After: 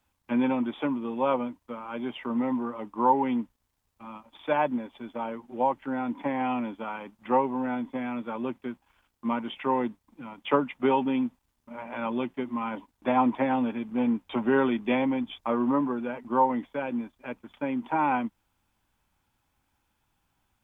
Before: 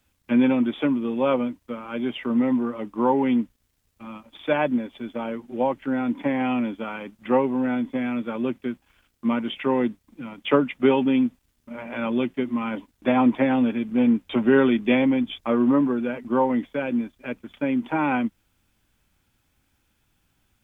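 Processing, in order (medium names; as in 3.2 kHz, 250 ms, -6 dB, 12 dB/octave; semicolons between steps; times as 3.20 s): peaking EQ 920 Hz +10 dB 0.82 oct; trim -7 dB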